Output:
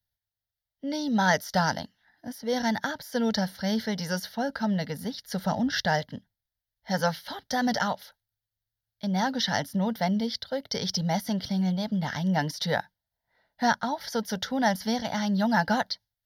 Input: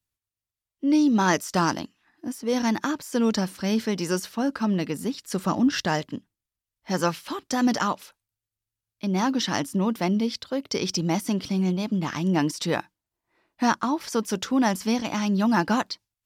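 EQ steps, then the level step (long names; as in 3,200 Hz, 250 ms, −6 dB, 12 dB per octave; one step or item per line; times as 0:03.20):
phaser with its sweep stopped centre 1,700 Hz, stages 8
+2.0 dB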